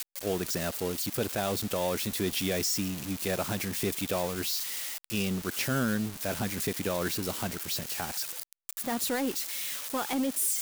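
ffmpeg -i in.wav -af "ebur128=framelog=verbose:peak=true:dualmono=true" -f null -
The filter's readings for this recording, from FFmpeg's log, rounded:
Integrated loudness:
  I:         -27.6 LUFS
  Threshold: -37.6 LUFS
Loudness range:
  LRA:         1.8 LU
  Threshold: -47.7 LUFS
  LRA low:   -28.7 LUFS
  LRA high:  -26.9 LUFS
True peak:
  Peak:      -17.7 dBFS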